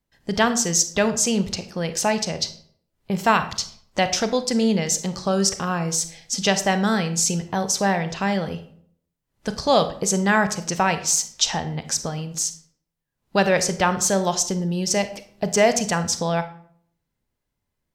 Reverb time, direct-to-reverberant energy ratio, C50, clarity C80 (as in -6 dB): 0.60 s, 10.0 dB, 12.5 dB, 15.5 dB